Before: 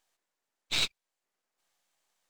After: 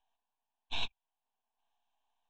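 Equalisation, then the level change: inverse Chebyshev low-pass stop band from 12 kHz, stop band 60 dB; static phaser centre 550 Hz, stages 6; static phaser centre 1.3 kHz, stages 6; +4.0 dB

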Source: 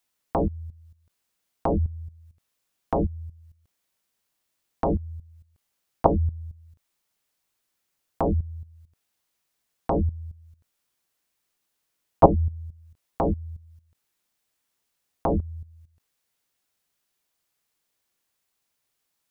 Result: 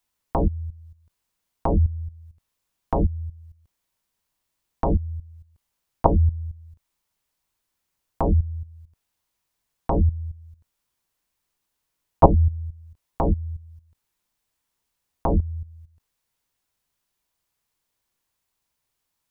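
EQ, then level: bass shelf 110 Hz +11.5 dB; peaking EQ 970 Hz +5 dB 0.34 oct; -1.5 dB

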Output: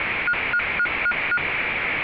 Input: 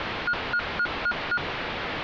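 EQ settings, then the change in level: resonant low-pass 2.3 kHz, resonance Q 5.7; 0.0 dB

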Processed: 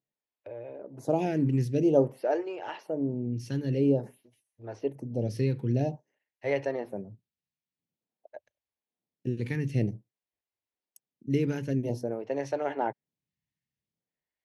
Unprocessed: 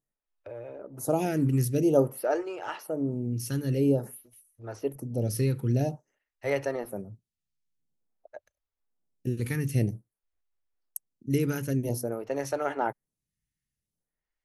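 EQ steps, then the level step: band-pass 110–4000 Hz; peaking EQ 1.3 kHz -11.5 dB 0.35 oct; 0.0 dB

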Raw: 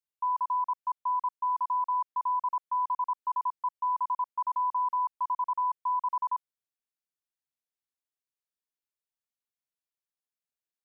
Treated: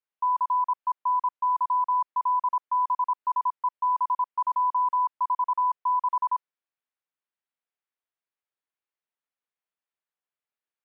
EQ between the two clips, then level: high-pass 720 Hz 6 dB/octave; distance through air 410 m; +8.0 dB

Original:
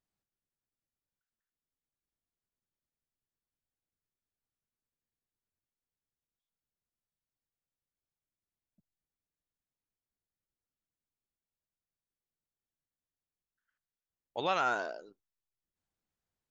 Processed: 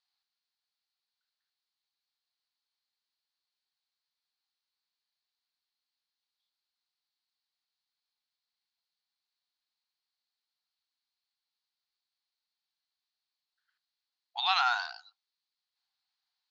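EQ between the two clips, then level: brick-wall FIR high-pass 700 Hz; resonant low-pass 4.3 kHz, resonance Q 6.2; +2.5 dB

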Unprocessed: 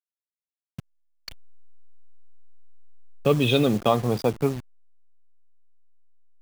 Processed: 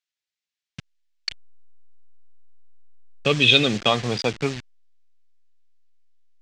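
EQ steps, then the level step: distance through air 120 m; treble shelf 2.1 kHz +10.5 dB; high-order bell 3.6 kHz +9 dB 2.7 oct; -2.0 dB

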